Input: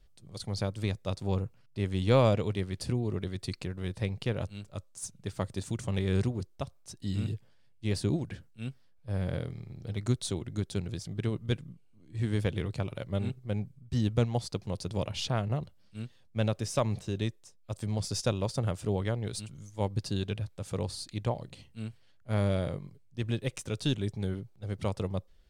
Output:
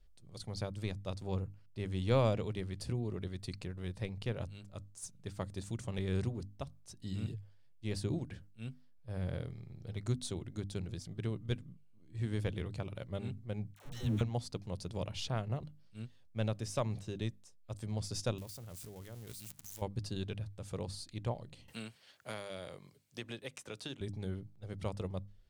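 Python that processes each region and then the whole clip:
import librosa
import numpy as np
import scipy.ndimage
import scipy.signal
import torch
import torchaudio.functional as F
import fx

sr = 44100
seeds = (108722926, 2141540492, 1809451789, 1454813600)

y = fx.chain(x, sr, fx.zero_step(step_db=-37.0),
    fx.notch(hz=4800.0, q=6.5),
    fx.dispersion(late='lows', ms=117.0, hz=550.0), at=(13.74, 14.21))
y = fx.chain(y, sr, fx.crossing_spikes(level_db=-24.5),
    fx.level_steps(step_db=21), at=(18.38, 19.82))
y = fx.chain(y, sr, fx.highpass(hz=670.0, slope=6),
    fx.band_squash(depth_pct=100), at=(21.68, 24.01))
y = fx.low_shelf(y, sr, hz=64.0, db=7.0)
y = fx.hum_notches(y, sr, base_hz=50, count=6)
y = y * 10.0 ** (-6.5 / 20.0)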